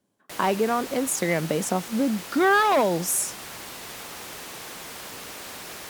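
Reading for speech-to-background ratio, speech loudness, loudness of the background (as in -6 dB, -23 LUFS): 13.5 dB, -23.5 LUFS, -37.0 LUFS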